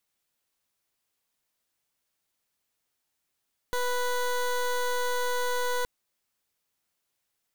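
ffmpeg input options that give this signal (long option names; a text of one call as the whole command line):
ffmpeg -f lavfi -i "aevalsrc='0.0422*(2*lt(mod(493*t,1),0.19)-1)':duration=2.12:sample_rate=44100" out.wav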